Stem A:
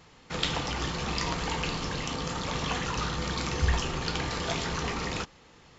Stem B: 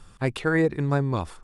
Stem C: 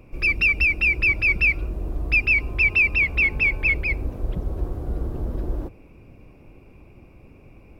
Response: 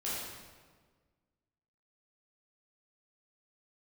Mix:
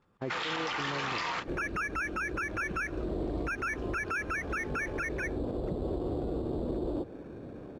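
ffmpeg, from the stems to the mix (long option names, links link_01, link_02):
-filter_complex "[0:a]bandpass=frequency=1600:width_type=q:width=1:csg=0,volume=2dB[link_01];[1:a]volume=-10.5dB,asplit=2[link_02][link_03];[2:a]acrusher=samples=11:mix=1:aa=0.000001,adelay=1350,volume=0dB[link_04];[link_03]apad=whole_len=255286[link_05];[link_01][link_05]sidechaingate=range=-33dB:threshold=-52dB:ratio=16:detection=peak[link_06];[link_02][link_04]amix=inputs=2:normalize=0,bandpass=frequency=430:width_type=q:width=0.81:csg=0,acompressor=threshold=-39dB:ratio=3,volume=0dB[link_07];[link_06][link_07]amix=inputs=2:normalize=0,dynaudnorm=framelen=120:gausssize=3:maxgain=9.5dB,alimiter=level_in=1dB:limit=-24dB:level=0:latency=1:release=35,volume=-1dB"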